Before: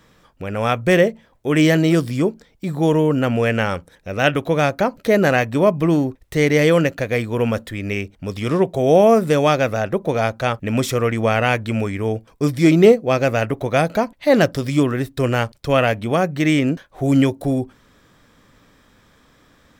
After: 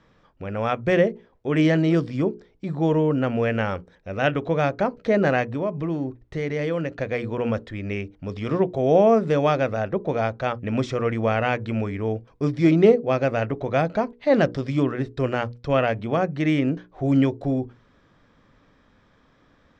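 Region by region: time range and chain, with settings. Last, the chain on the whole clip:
0:05.47–0:07.01: downward compressor 2 to 1, threshold −22 dBFS + one half of a high-frequency compander decoder only
whole clip: low-pass filter 6,200 Hz 24 dB per octave; high-shelf EQ 2,700 Hz −9 dB; mains-hum notches 60/120/180/240/300/360/420/480 Hz; level −3.5 dB

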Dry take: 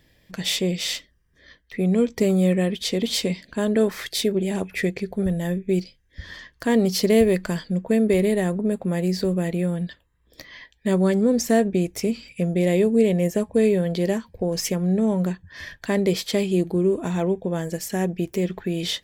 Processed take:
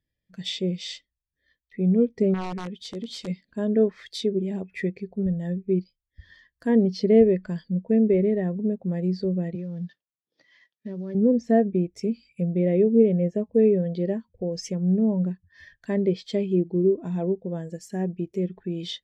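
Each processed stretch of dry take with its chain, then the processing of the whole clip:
0:02.34–0:03.28: downward compressor 1.5 to 1, threshold −29 dBFS + wrap-around overflow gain 18.5 dB
0:09.55–0:11.15: variable-slope delta modulation 32 kbit/s + high-pass filter 120 Hz 24 dB per octave + downward compressor 10 to 1, threshold −23 dBFS
whole clip: treble cut that deepens with the level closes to 3,000 Hz, closed at −16 dBFS; high-shelf EQ 3,900 Hz +4.5 dB; every bin expanded away from the loudest bin 1.5 to 1

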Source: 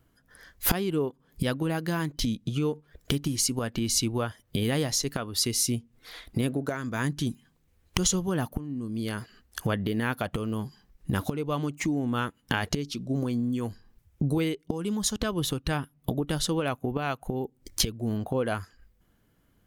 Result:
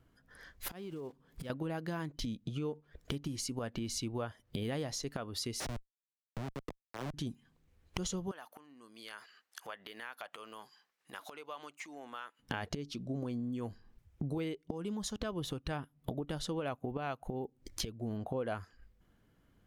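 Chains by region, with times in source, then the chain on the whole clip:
0:00.68–0:01.50: one scale factor per block 5 bits + downward compressor 16 to 1, threshold −35 dBFS
0:05.60–0:07.14: comparator with hysteresis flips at −24.5 dBFS + multiband upward and downward expander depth 40%
0:08.31–0:12.39: high-pass filter 950 Hz + downward compressor 2 to 1, threshold −42 dBFS
whole clip: high-shelf EQ 7,800 Hz −11 dB; downward compressor 2 to 1, threshold −40 dBFS; dynamic equaliser 640 Hz, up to +4 dB, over −50 dBFS, Q 1.3; level −2 dB

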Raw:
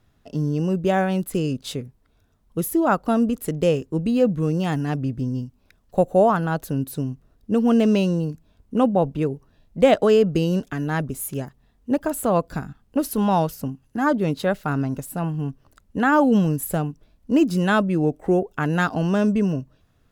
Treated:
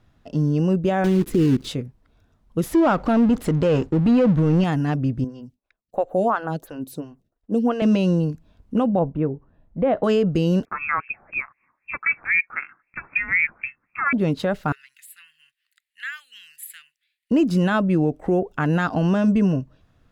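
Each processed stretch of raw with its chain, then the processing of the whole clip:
0:01.04–0:01.69: one scale factor per block 3 bits + low shelf with overshoot 490 Hz +8 dB, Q 3
0:02.63–0:04.64: power curve on the samples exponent 0.7 + downward expander −36 dBFS + parametric band 14,000 Hz −13.5 dB 0.86 octaves
0:05.24–0:07.82: downward expander −49 dBFS + low-shelf EQ 200 Hz −8 dB + phaser with staggered stages 2.9 Hz
0:08.99–0:10.04: low-pass filter 1,500 Hz + tuned comb filter 58 Hz, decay 0.18 s, harmonics odd, mix 30%
0:10.65–0:14.13: high-pass filter 200 Hz + auto-filter high-pass sine 3.9 Hz 460–2,000 Hz + voice inversion scrambler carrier 2,900 Hz
0:14.72–0:17.31: elliptic high-pass filter 1,900 Hz, stop band 60 dB + parametric band 5,800 Hz −15 dB 0.46 octaves
whole clip: high-shelf EQ 7,200 Hz −11.5 dB; notch filter 420 Hz, Q 12; brickwall limiter −14 dBFS; level +3 dB

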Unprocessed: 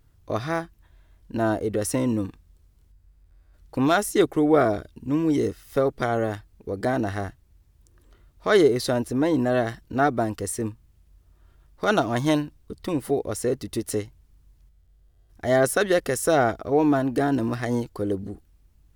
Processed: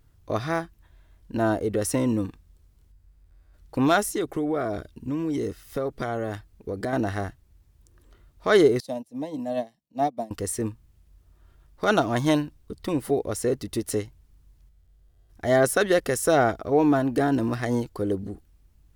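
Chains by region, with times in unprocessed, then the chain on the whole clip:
0:04.06–0:06.93: notch filter 880 Hz, Q 20 + downward compressor 3 to 1, threshold −25 dBFS
0:08.80–0:10.31: high-pass filter 88 Hz 24 dB per octave + phaser with its sweep stopped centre 380 Hz, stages 6 + expander for the loud parts 2.5 to 1, over −34 dBFS
whole clip: no processing

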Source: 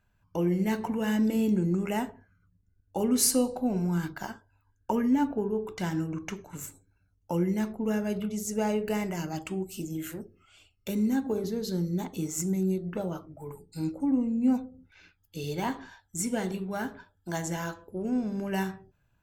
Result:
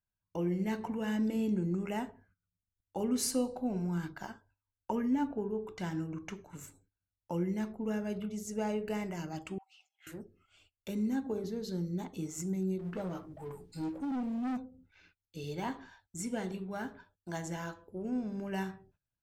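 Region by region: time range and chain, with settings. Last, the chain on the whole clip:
0:09.58–0:10.07: Chebyshev high-pass with heavy ripple 730 Hz, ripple 3 dB + high-frequency loss of the air 220 metres
0:12.79–0:14.57: mu-law and A-law mismatch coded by mu + double-tracking delay 16 ms −12 dB + hard clipping −26.5 dBFS
whole clip: noise gate −60 dBFS, range −17 dB; high-shelf EQ 10,000 Hz −10.5 dB; level −6 dB

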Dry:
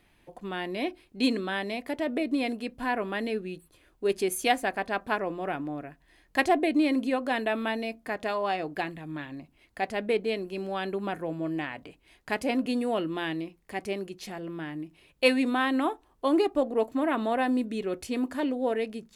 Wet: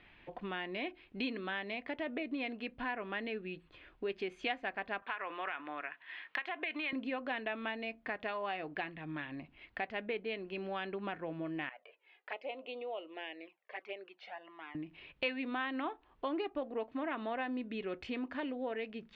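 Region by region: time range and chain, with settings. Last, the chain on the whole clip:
0:05.02–0:06.93: high-pass filter 430 Hz + flat-topped bell 1,900 Hz +10 dB 2.3 octaves + downward compressor, threshold −27 dBFS
0:11.69–0:14.75: flanger swept by the level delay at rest 2.7 ms, full sweep at −26.5 dBFS + four-pole ladder high-pass 430 Hz, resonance 35% + high-frequency loss of the air 76 metres
whole clip: low-pass filter 3,000 Hz 24 dB per octave; tilt shelving filter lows −5.5 dB, about 1,400 Hz; downward compressor 2.5 to 1, threshold −46 dBFS; level +5 dB

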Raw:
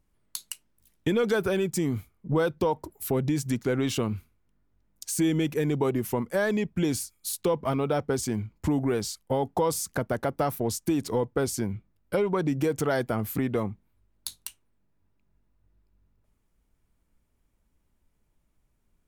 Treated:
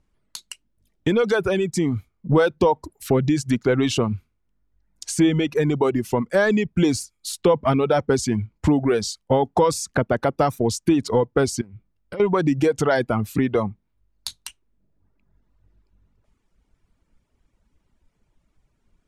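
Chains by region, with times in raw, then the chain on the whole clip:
0:11.61–0:12.20: downward compressor 8 to 1, threshold −38 dBFS + highs frequency-modulated by the lows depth 0.13 ms
whole clip: reverb reduction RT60 0.98 s; low-pass filter 6,900 Hz 12 dB per octave; speech leveller 2 s; level +7.5 dB

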